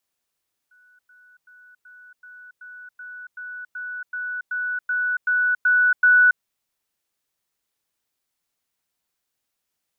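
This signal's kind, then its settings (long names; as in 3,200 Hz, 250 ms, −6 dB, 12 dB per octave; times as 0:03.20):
level staircase 1,480 Hz −53 dBFS, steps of 3 dB, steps 15, 0.28 s 0.10 s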